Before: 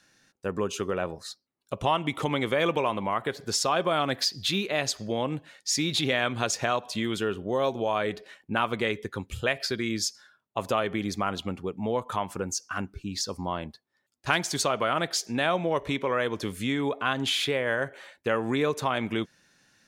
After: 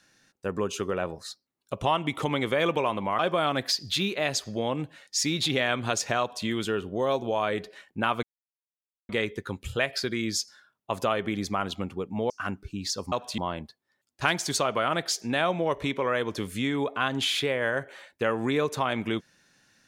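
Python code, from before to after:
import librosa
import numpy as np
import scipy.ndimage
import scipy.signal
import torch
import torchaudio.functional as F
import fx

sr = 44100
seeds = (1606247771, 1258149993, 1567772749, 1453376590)

y = fx.edit(x, sr, fx.cut(start_s=3.19, length_s=0.53),
    fx.duplicate(start_s=6.73, length_s=0.26, to_s=13.43),
    fx.insert_silence(at_s=8.76, length_s=0.86),
    fx.cut(start_s=11.97, length_s=0.64), tone=tone)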